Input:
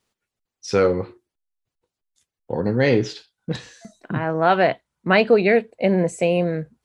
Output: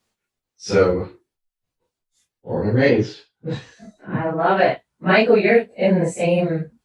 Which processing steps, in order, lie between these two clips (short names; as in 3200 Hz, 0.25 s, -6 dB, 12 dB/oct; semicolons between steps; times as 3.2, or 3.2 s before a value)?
phase scrambler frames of 0.1 s; 2.89–4.56 high shelf 5000 Hz -> 2900 Hz -11.5 dB; gain +1.5 dB